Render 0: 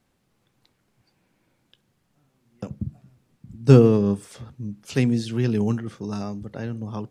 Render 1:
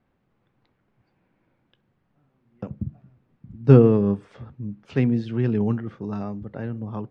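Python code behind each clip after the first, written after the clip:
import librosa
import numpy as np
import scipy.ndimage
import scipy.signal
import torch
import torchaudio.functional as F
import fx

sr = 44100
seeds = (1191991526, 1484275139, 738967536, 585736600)

y = scipy.signal.sosfilt(scipy.signal.butter(2, 2100.0, 'lowpass', fs=sr, output='sos'), x)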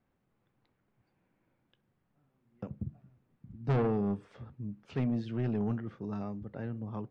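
y = 10.0 ** (-17.5 / 20.0) * np.tanh(x / 10.0 ** (-17.5 / 20.0))
y = y * 10.0 ** (-7.0 / 20.0)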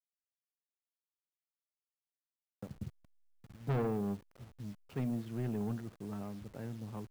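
y = fx.delta_hold(x, sr, step_db=-48.0)
y = y * 10.0 ** (-4.5 / 20.0)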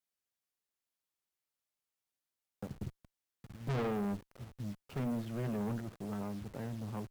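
y = fx.clip_asym(x, sr, top_db=-41.5, bottom_db=-33.0)
y = y * 10.0 ** (4.0 / 20.0)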